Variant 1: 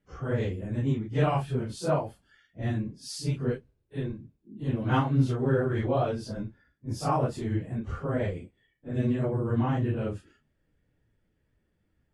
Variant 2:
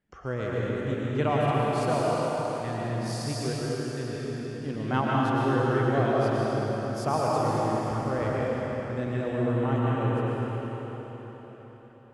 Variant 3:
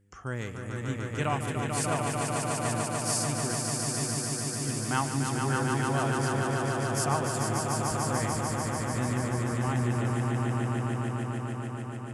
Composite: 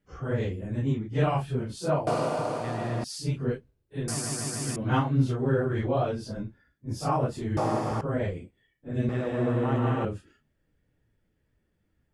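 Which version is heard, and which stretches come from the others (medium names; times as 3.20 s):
1
2.07–3.04 s: from 2
4.08–4.76 s: from 3
7.57–8.01 s: from 2
9.09–10.05 s: from 2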